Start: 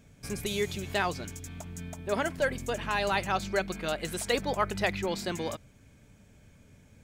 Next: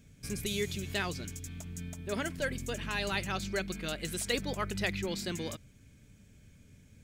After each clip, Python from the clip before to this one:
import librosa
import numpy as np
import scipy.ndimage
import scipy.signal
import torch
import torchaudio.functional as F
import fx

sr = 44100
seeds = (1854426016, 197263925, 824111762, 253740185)

y = fx.peak_eq(x, sr, hz=820.0, db=-11.0, octaves=1.6)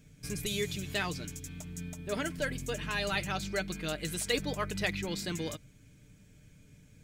y = x + 0.42 * np.pad(x, (int(6.6 * sr / 1000.0), 0))[:len(x)]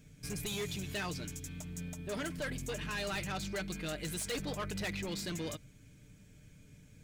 y = 10.0 ** (-33.0 / 20.0) * np.tanh(x / 10.0 ** (-33.0 / 20.0))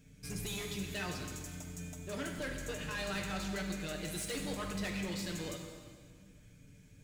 y = fx.rev_plate(x, sr, seeds[0], rt60_s=1.8, hf_ratio=0.9, predelay_ms=0, drr_db=2.0)
y = y * 10.0 ** (-3.0 / 20.0)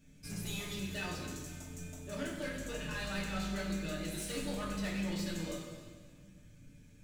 y = fx.room_shoebox(x, sr, seeds[1], volume_m3=430.0, walls='furnished', distance_m=2.5)
y = y * 10.0 ** (-4.5 / 20.0)